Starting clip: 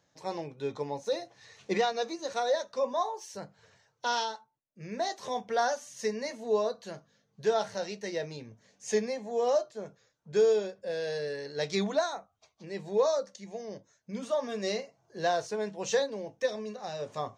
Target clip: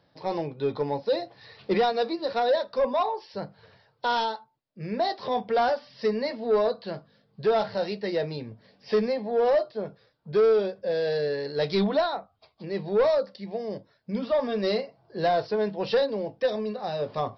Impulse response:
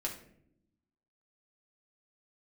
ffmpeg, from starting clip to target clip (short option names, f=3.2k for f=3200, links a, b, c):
-af "aresample=11025,asoftclip=type=tanh:threshold=-24.5dB,aresample=44100,equalizer=f=2.2k:t=o:w=1.8:g=-4.5,volume=8.5dB"